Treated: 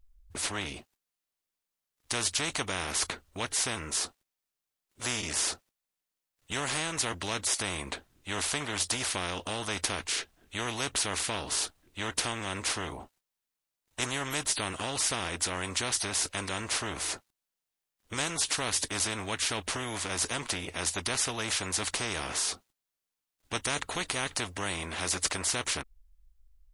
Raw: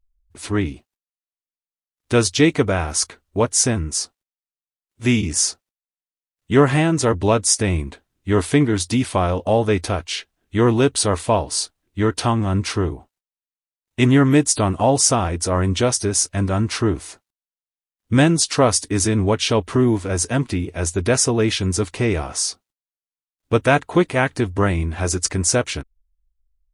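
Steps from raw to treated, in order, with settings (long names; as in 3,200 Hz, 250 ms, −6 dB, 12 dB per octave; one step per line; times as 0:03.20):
every bin compressed towards the loudest bin 4 to 1
level −9 dB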